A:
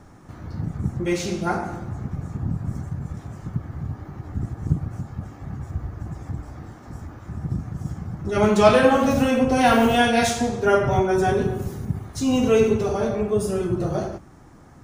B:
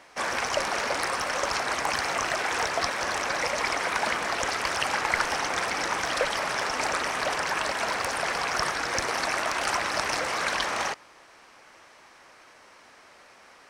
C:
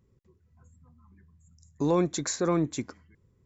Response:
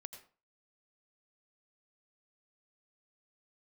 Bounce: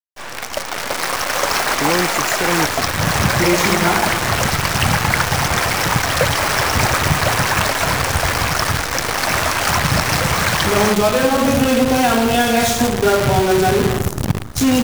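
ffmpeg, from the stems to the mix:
-filter_complex "[0:a]acompressor=threshold=-20dB:ratio=6,aeval=exprs='val(0)+0.00355*(sin(2*PI*60*n/s)+sin(2*PI*2*60*n/s)/2+sin(2*PI*3*60*n/s)/3+sin(2*PI*4*60*n/s)/4+sin(2*PI*5*60*n/s)/5)':channel_layout=same,adelay=2400,volume=3dB,asplit=2[link_01][link_02];[link_02]volume=-24dB[link_03];[1:a]dynaudnorm=framelen=180:gausssize=13:maxgain=13dB,volume=-4dB[link_04];[2:a]volume=0dB[link_05];[3:a]atrim=start_sample=2205[link_06];[link_03][link_06]afir=irnorm=-1:irlink=0[link_07];[link_01][link_04][link_05][link_07]amix=inputs=4:normalize=0,dynaudnorm=framelen=120:gausssize=3:maxgain=6dB,acrusher=bits=4:dc=4:mix=0:aa=0.000001"

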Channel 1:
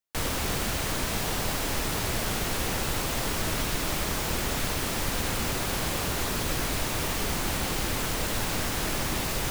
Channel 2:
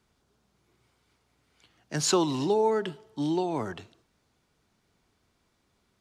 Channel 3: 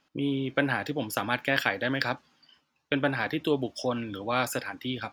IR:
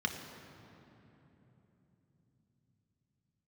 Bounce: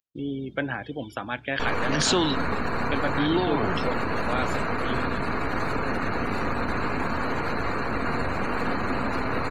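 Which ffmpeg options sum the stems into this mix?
-filter_complex "[0:a]acrossover=split=2900[link_01][link_02];[link_02]acompressor=threshold=-39dB:ratio=4:attack=1:release=60[link_03];[link_01][link_03]amix=inputs=2:normalize=0,aeval=exprs='abs(val(0))':channel_layout=same,adelay=1450,volume=2dB,asplit=2[link_04][link_05];[link_05]volume=-4.5dB[link_06];[1:a]equalizer=frequency=3300:width_type=o:width=0.79:gain=11,acompressor=mode=upward:threshold=-39dB:ratio=2.5,volume=2.5dB[link_07];[2:a]lowpass=8100,volume=-2.5dB,asplit=2[link_08][link_09];[link_09]apad=whole_len=264751[link_10];[link_07][link_10]sidechaingate=range=-33dB:threshold=-56dB:ratio=16:detection=peak[link_11];[link_04][link_11]amix=inputs=2:normalize=0,acontrast=87,alimiter=limit=-15dB:level=0:latency=1:release=57,volume=0dB[link_12];[3:a]atrim=start_sample=2205[link_13];[link_06][link_13]afir=irnorm=-1:irlink=0[link_14];[link_08][link_12][link_14]amix=inputs=3:normalize=0,afftdn=noise_reduction=30:noise_floor=-36"

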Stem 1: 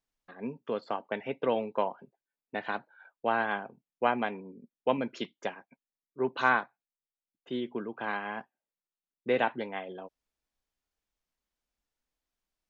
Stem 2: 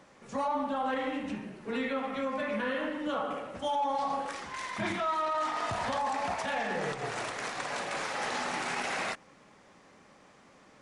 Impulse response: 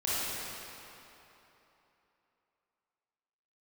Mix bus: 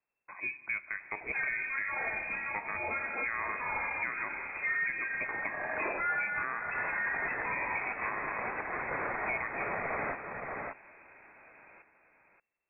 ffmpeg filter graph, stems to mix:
-filter_complex "[0:a]volume=2.5dB,asplit=2[link_01][link_02];[link_02]volume=-22.5dB[link_03];[1:a]adelay=1000,volume=3dB,asplit=2[link_04][link_05];[link_05]volume=-8.5dB[link_06];[2:a]atrim=start_sample=2205[link_07];[link_03][link_07]afir=irnorm=-1:irlink=0[link_08];[link_06]aecho=0:1:579:1[link_09];[link_01][link_04][link_08][link_09]amix=inputs=4:normalize=0,lowpass=frequency=2300:width_type=q:width=0.5098,lowpass=frequency=2300:width_type=q:width=0.6013,lowpass=frequency=2300:width_type=q:width=0.9,lowpass=frequency=2300:width_type=q:width=2.563,afreqshift=-2700,tiltshelf=frequency=1300:gain=7,alimiter=limit=-24dB:level=0:latency=1:release=388"

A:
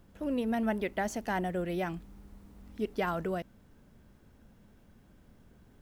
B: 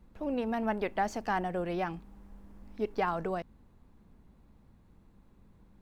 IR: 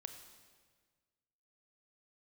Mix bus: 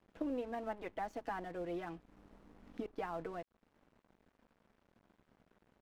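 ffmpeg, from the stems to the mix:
-filter_complex "[0:a]highpass=220,alimiter=level_in=1dB:limit=-24dB:level=0:latency=1:release=155,volume=-1dB,volume=2dB[link_01];[1:a]adelay=6.4,volume=-10.5dB,asplit=2[link_02][link_03];[link_03]apad=whole_len=256502[link_04];[link_01][link_04]sidechaincompress=threshold=-52dB:ratio=6:attack=30:release=305[link_05];[link_05][link_02]amix=inputs=2:normalize=0,aemphasis=mode=reproduction:type=75fm,aeval=exprs='sgn(val(0))*max(abs(val(0))-0.00106,0)':channel_layout=same"

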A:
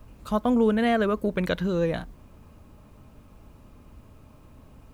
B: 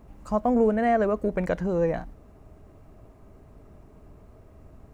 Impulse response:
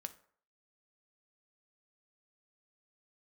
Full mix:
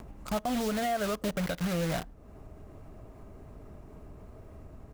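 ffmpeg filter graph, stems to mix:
-filter_complex "[0:a]aecho=1:1:7:0.42,acrusher=bits=4:mix=0:aa=0.000001,volume=-4.5dB,asplit=2[link_01][link_02];[link_02]volume=-13dB[link_03];[1:a]acompressor=mode=upward:threshold=-31dB:ratio=2.5,adelay=1.6,volume=-6.5dB[link_04];[2:a]atrim=start_sample=2205[link_05];[link_03][link_05]afir=irnorm=-1:irlink=0[link_06];[link_01][link_04][link_06]amix=inputs=3:normalize=0,alimiter=limit=-21.5dB:level=0:latency=1:release=179"

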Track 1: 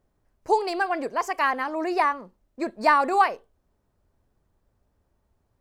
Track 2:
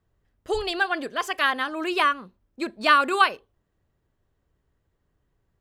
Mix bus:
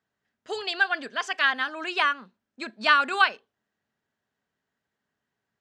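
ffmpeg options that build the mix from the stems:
ffmpeg -i stem1.wav -i stem2.wav -filter_complex "[0:a]volume=-19dB[link_01];[1:a]lowshelf=frequency=400:gain=-10,volume=0dB[link_02];[link_01][link_02]amix=inputs=2:normalize=0,highpass=180,equalizer=frequency=220:width_type=q:width=4:gain=6,equalizer=frequency=340:width_type=q:width=4:gain=-7,equalizer=frequency=520:width_type=q:width=4:gain=-6,equalizer=frequency=1100:width_type=q:width=4:gain=-5,equalizer=frequency=1600:width_type=q:width=4:gain=4,lowpass=frequency=7300:width=0.5412,lowpass=frequency=7300:width=1.3066" out.wav

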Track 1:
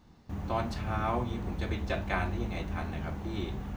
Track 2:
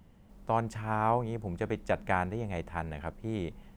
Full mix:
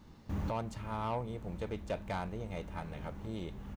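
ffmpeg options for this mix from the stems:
ffmpeg -i stem1.wav -i stem2.wav -filter_complex "[0:a]bandreject=frequency=730:width=12,volume=31dB,asoftclip=hard,volume=-31dB,volume=1.5dB[link_01];[1:a]bandreject=frequency=770:width=12,asoftclip=type=tanh:threshold=-22.5dB,equalizer=frequency=1700:width_type=o:width=0.36:gain=-12,adelay=6.3,volume=-4.5dB,asplit=2[link_02][link_03];[link_03]apad=whole_len=165859[link_04];[link_01][link_04]sidechaincompress=threshold=-48dB:ratio=8:attack=21:release=721[link_05];[link_05][link_02]amix=inputs=2:normalize=0" out.wav

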